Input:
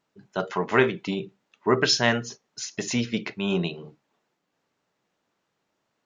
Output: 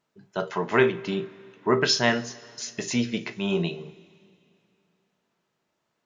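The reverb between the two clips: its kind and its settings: two-slope reverb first 0.22 s, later 2.7 s, from -21 dB, DRR 8.5 dB; gain -1.5 dB

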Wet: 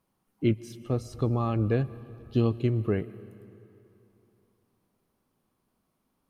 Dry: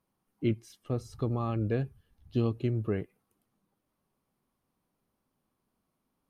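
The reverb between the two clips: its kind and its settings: digital reverb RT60 3 s, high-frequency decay 0.75×, pre-delay 90 ms, DRR 17.5 dB; gain +4 dB

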